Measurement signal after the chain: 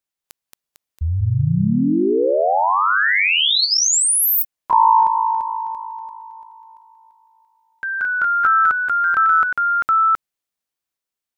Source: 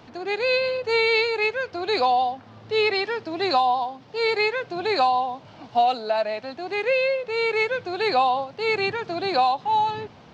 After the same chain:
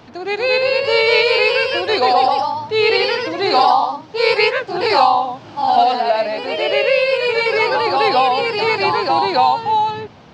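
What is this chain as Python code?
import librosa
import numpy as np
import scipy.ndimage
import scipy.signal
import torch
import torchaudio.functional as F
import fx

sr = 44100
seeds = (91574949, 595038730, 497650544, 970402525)

y = fx.echo_pitch(x, sr, ms=242, semitones=1, count=3, db_per_echo=-3.0)
y = y * librosa.db_to_amplitude(5.0)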